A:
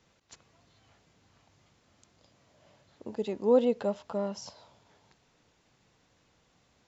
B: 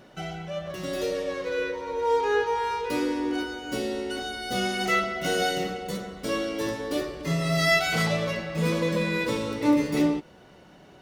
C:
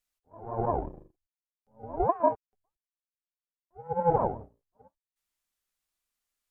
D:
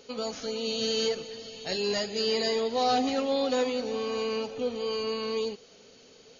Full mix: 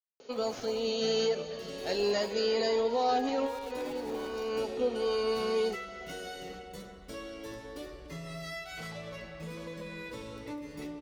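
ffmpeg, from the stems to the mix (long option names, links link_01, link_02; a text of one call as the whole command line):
ffmpeg -i stem1.wav -i stem2.wav -i stem3.wav -i stem4.wav -filter_complex "[0:a]highpass=920,acrusher=bits=7:dc=4:mix=0:aa=0.000001,volume=-10.5dB,asplit=2[link_01][link_02];[1:a]asubboost=boost=3.5:cutoff=81,acompressor=threshold=-27dB:ratio=6,adelay=850,volume=-11dB[link_03];[2:a]acompressor=threshold=-36dB:ratio=4,acrusher=bits=6:mix=0:aa=0.000001,volume=-11dB[link_04];[3:a]highpass=frequency=670:poles=1,tiltshelf=frequency=1200:gain=7,alimiter=limit=-22dB:level=0:latency=1,adelay=200,volume=1.5dB[link_05];[link_02]apad=whole_len=290761[link_06];[link_05][link_06]sidechaincompress=threshold=-53dB:ratio=8:attack=25:release=595[link_07];[link_01][link_03][link_04][link_07]amix=inputs=4:normalize=0" out.wav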